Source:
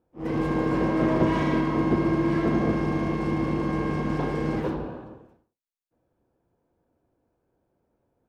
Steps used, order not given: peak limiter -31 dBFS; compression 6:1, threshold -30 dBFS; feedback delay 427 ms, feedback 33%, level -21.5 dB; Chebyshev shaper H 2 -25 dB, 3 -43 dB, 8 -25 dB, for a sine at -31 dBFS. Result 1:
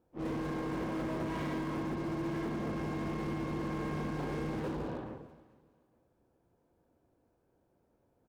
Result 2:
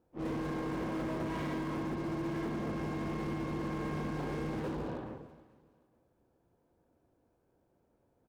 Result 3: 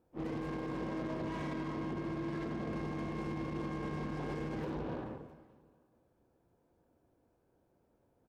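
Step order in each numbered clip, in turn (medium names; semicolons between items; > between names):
compression > Chebyshev shaper > peak limiter > feedback delay; compression > Chebyshev shaper > feedback delay > peak limiter; compression > feedback delay > peak limiter > Chebyshev shaper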